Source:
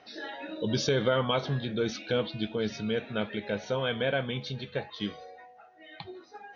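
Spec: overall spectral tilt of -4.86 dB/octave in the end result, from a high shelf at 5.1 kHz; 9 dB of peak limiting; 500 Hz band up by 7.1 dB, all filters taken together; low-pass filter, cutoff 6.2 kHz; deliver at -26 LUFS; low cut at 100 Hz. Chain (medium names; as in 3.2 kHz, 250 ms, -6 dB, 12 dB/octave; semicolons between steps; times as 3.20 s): high-pass 100 Hz; low-pass 6.2 kHz; peaking EQ 500 Hz +8 dB; treble shelf 5.1 kHz -8 dB; trim +4 dB; peak limiter -14.5 dBFS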